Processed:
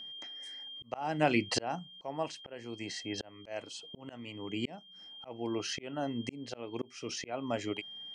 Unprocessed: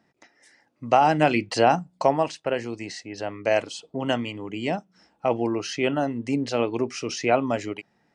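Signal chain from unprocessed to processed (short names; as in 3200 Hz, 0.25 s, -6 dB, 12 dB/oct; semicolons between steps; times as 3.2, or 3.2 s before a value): whine 3200 Hz -43 dBFS; auto swell 0.766 s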